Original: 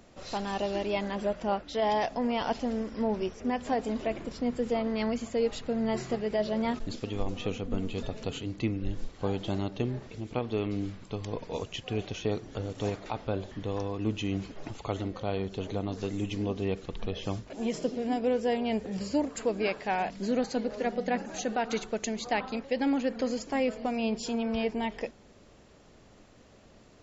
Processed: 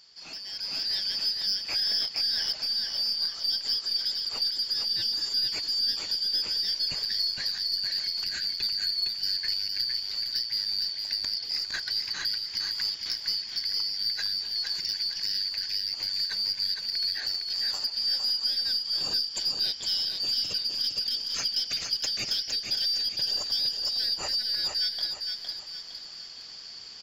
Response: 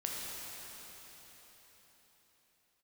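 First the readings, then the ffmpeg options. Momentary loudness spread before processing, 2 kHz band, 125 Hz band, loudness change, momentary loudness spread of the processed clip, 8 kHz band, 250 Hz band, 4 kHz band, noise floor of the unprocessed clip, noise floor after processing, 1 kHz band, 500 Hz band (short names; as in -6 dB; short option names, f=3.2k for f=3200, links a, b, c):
7 LU, -1.0 dB, under -15 dB, +5.5 dB, 4 LU, n/a, under -20 dB, +19.5 dB, -56 dBFS, -42 dBFS, -16.5 dB, under -20 dB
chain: -filter_complex "[0:a]afftfilt=real='real(if(lt(b,272),68*(eq(floor(b/68),0)*3+eq(floor(b/68),1)*2+eq(floor(b/68),2)*1+eq(floor(b/68),3)*0)+mod(b,68),b),0)':imag='imag(if(lt(b,272),68*(eq(floor(b/68),0)*3+eq(floor(b/68),1)*2+eq(floor(b/68),2)*1+eq(floor(b/68),3)*0)+mod(b,68),b),0)':win_size=2048:overlap=0.75,acompressor=threshold=-42dB:ratio=2.5,aeval=exprs='(tanh(31.6*val(0)+0.1)-tanh(0.1))/31.6':c=same,asplit=2[a][b];[b]aecho=0:1:460|920|1380|1840|2300:0.562|0.236|0.0992|0.0417|0.0175[c];[a][c]amix=inputs=2:normalize=0,dynaudnorm=f=110:g=13:m=11dB"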